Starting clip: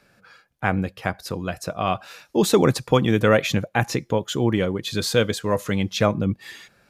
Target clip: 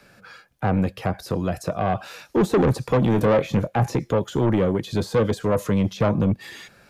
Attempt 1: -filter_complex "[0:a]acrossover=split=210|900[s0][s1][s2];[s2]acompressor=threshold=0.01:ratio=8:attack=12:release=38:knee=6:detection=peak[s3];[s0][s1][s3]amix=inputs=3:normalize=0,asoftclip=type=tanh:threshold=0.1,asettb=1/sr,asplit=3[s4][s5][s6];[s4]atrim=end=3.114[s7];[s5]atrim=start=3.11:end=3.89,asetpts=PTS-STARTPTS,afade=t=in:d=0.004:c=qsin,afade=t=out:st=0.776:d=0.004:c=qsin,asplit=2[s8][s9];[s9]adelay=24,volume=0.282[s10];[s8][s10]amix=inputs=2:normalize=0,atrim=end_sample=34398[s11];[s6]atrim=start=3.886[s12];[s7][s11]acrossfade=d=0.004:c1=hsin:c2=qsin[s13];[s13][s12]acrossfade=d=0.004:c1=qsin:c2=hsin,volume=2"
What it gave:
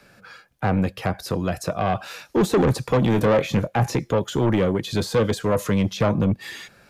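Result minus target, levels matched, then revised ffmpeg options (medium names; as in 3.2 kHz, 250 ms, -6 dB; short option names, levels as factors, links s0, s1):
compression: peak gain reduction -5.5 dB
-filter_complex "[0:a]acrossover=split=210|900[s0][s1][s2];[s2]acompressor=threshold=0.00473:ratio=8:attack=12:release=38:knee=6:detection=peak[s3];[s0][s1][s3]amix=inputs=3:normalize=0,asoftclip=type=tanh:threshold=0.1,asettb=1/sr,asplit=3[s4][s5][s6];[s4]atrim=end=3.114[s7];[s5]atrim=start=3.11:end=3.89,asetpts=PTS-STARTPTS,afade=t=in:d=0.004:c=qsin,afade=t=out:st=0.776:d=0.004:c=qsin,asplit=2[s8][s9];[s9]adelay=24,volume=0.282[s10];[s8][s10]amix=inputs=2:normalize=0,atrim=end_sample=34398[s11];[s6]atrim=start=3.886[s12];[s7][s11]acrossfade=d=0.004:c1=hsin:c2=qsin[s13];[s13][s12]acrossfade=d=0.004:c1=qsin:c2=hsin,volume=2"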